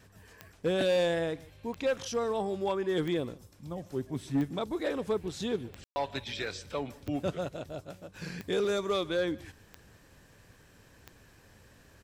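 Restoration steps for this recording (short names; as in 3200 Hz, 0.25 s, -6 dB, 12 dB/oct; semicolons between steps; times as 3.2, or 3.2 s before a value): de-click; room tone fill 5.84–5.96; inverse comb 0.149 s -22 dB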